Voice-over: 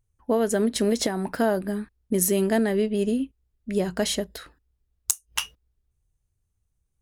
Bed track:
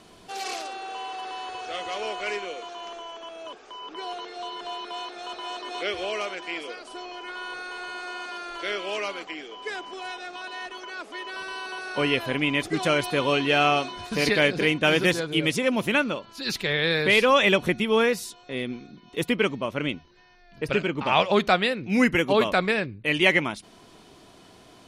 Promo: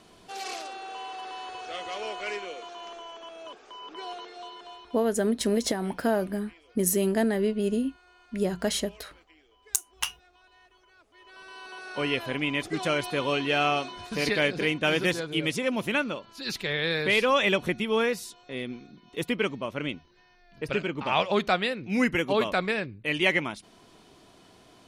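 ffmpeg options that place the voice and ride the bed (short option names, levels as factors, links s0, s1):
-filter_complex "[0:a]adelay=4650,volume=0.75[s0];[1:a]volume=5.96,afade=t=out:st=4.09:d=0.99:silence=0.105925,afade=t=in:st=11.13:d=0.98:silence=0.112202[s1];[s0][s1]amix=inputs=2:normalize=0"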